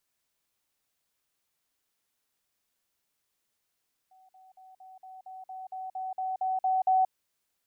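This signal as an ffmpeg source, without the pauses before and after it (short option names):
-f lavfi -i "aevalsrc='pow(10,(-56+3*floor(t/0.23))/20)*sin(2*PI*753*t)*clip(min(mod(t,0.23),0.18-mod(t,0.23))/0.005,0,1)':d=2.99:s=44100"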